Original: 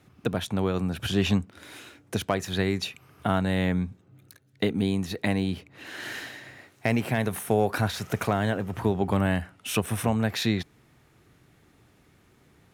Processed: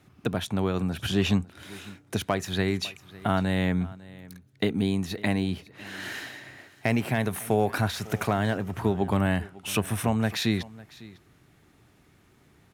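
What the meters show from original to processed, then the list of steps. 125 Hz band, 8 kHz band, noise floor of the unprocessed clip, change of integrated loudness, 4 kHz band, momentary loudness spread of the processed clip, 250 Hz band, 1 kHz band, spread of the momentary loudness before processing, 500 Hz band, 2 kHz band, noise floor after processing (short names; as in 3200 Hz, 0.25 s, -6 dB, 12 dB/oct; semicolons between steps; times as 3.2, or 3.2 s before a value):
0.0 dB, 0.0 dB, -61 dBFS, 0.0 dB, 0.0 dB, 16 LU, 0.0 dB, 0.0 dB, 12 LU, -1.0 dB, 0.0 dB, -60 dBFS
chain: bell 500 Hz -4 dB 0.21 oct; echo 0.552 s -20.5 dB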